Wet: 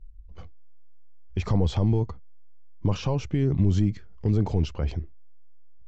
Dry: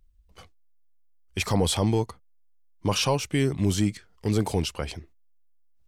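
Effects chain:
downsampling to 16,000 Hz
brickwall limiter −20 dBFS, peak gain reduction 7 dB
spectral tilt −3.5 dB per octave
level −2 dB

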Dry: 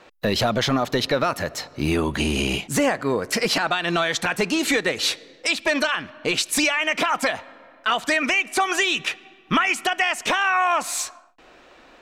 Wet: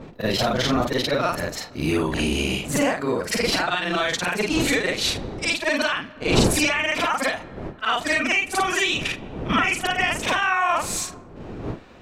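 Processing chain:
every overlapping window played backwards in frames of 113 ms
wind on the microphone 380 Hz −35 dBFS
level +2.5 dB

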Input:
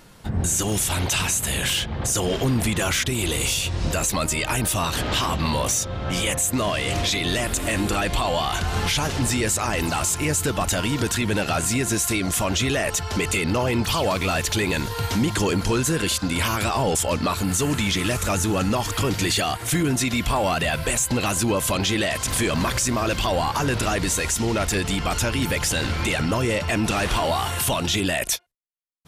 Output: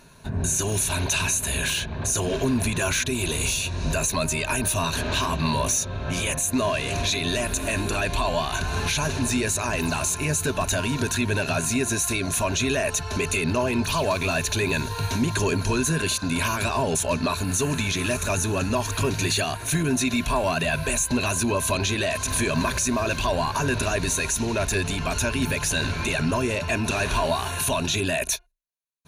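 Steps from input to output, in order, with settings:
EQ curve with evenly spaced ripples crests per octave 1.5, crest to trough 10 dB
level −3 dB

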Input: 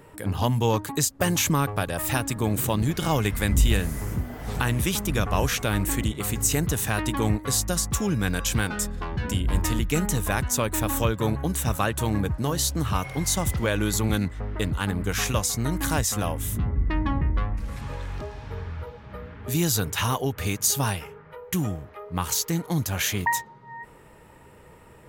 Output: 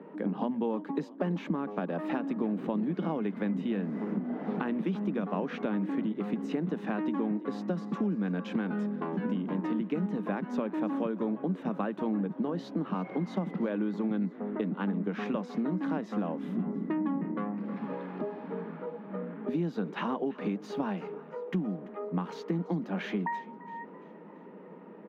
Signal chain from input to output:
Butterworth high-pass 180 Hz 72 dB per octave
spectral tilt −4 dB per octave
downward compressor 5 to 1, threshold −28 dBFS, peak gain reduction 12.5 dB
high-frequency loss of the air 320 metres
echo with shifted repeats 337 ms, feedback 48%, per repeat +35 Hz, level −20 dB

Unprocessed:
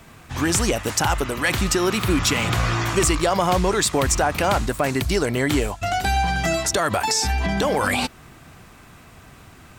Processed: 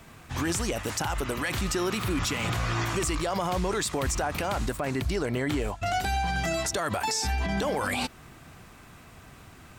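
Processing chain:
0:04.77–0:05.86: high-shelf EQ 4,400 Hz −7.5 dB
brickwall limiter −16 dBFS, peak gain reduction 7 dB
level −3.5 dB

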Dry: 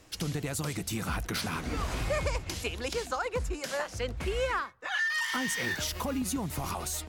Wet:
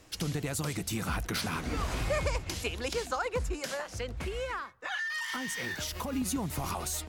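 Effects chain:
0:03.70–0:06.13: downward compressor, threshold −32 dBFS, peak gain reduction 6.5 dB

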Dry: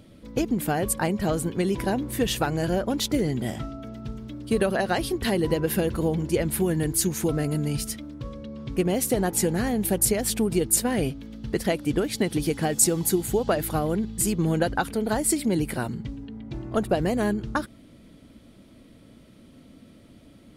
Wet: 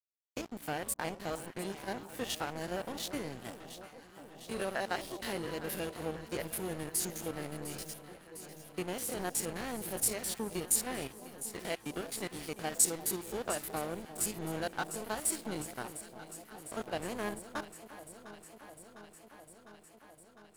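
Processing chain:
spectrum averaged block by block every 50 ms
low-shelf EQ 380 Hz −11 dB
dead-zone distortion −36.5 dBFS
delay that swaps between a low-pass and a high-pass 352 ms, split 970 Hz, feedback 86%, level −12.5 dB
level −3.5 dB

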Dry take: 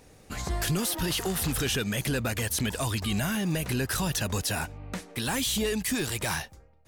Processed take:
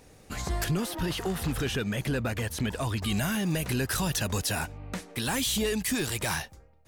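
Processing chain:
0:00.64–0:03.03: high-shelf EQ 3,700 Hz −10.5 dB

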